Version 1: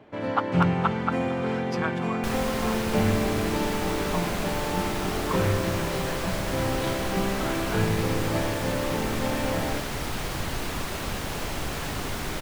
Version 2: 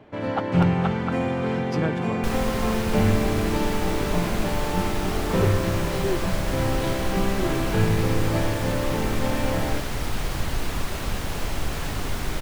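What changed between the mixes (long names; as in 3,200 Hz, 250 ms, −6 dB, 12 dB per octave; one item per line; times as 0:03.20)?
speech: remove high-pass with resonance 1,100 Hz, resonance Q 2.6
first sound: send on
master: add low-shelf EQ 76 Hz +9.5 dB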